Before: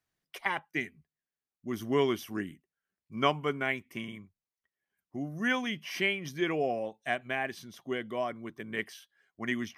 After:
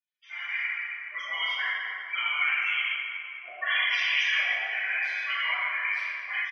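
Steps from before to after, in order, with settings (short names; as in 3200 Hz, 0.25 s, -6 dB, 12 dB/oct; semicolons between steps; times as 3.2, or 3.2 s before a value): spectral limiter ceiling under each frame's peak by 20 dB; compressor 10:1, threshold -34 dBFS, peak gain reduction 14 dB; loudest bins only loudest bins 8; ladder high-pass 1700 Hz, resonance 30%; limiter -50 dBFS, peak gain reduction 11 dB; tempo 1.5×; LPF 3700 Hz 12 dB/oct; shoebox room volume 140 m³, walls hard, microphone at 2.6 m; AGC gain up to 12.5 dB; gain +8 dB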